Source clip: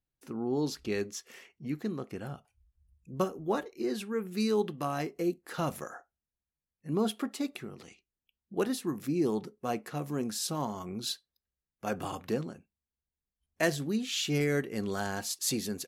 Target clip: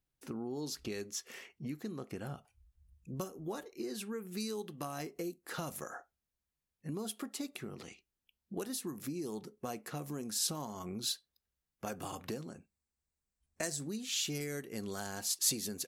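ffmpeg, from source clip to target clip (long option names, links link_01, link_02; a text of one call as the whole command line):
ffmpeg -i in.wav -filter_complex "[0:a]asettb=1/sr,asplit=3[link_01][link_02][link_03];[link_01]atrim=end=12.504[link_04];[link_02]atrim=start=12.5:end=13.92,asetpts=PTS-STARTPTS,afade=type=in:duration=0.004:curve=qsin,afade=type=out:start_time=1.416:duration=0.004:curve=qsin,equalizer=frequency=3150:width_type=o:width=0.33:gain=-8,equalizer=frequency=8000:width_type=o:width=0.33:gain=7,equalizer=frequency=12500:width_type=o:width=0.33:gain=-10[link_05];[link_03]atrim=start=13.916[link_06];[link_04][link_05]acrossfade=duration=0.004:curve1=hsin:curve2=qsin[link_07];[link_07][link_06]acrossfade=duration=0.004:curve1=qsin:curve2=hsin,acrossover=split=5000[link_08][link_09];[link_08]acompressor=threshold=-40dB:ratio=6[link_10];[link_10][link_09]amix=inputs=2:normalize=0,volume=2dB" out.wav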